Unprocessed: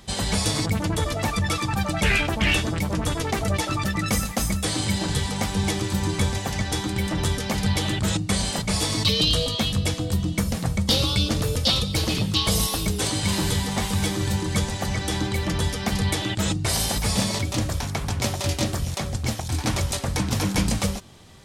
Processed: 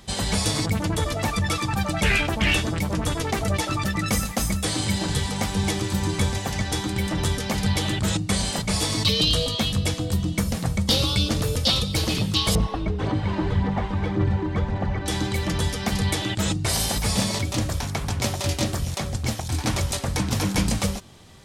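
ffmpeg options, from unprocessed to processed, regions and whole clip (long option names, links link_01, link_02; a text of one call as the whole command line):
ffmpeg -i in.wav -filter_complex "[0:a]asettb=1/sr,asplit=3[link_01][link_02][link_03];[link_01]atrim=end=12.554[link_04];[link_02]atrim=start=12.55:end=15.06,asetpts=PTS-STARTPTS,afade=type=in:duration=0.004:curve=qsin,afade=type=out:start_time=2.506:duration=0.004:curve=qsin,lowpass=1600,aphaser=in_gain=1:out_gain=1:delay=3.3:decay=0.4:speed=1.8:type=sinusoidal[link_05];[link_03]atrim=start=15.056[link_06];[link_04][link_05]acrossfade=duration=0.004:curve1=hsin:curve2=qsin[link_07];[link_07][link_06]acrossfade=duration=0.004:curve1=qsin:curve2=hsin" out.wav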